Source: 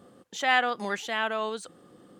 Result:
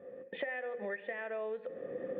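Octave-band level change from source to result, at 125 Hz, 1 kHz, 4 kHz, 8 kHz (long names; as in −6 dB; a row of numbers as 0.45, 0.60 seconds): can't be measured, −19.5 dB, −22.5 dB, below −40 dB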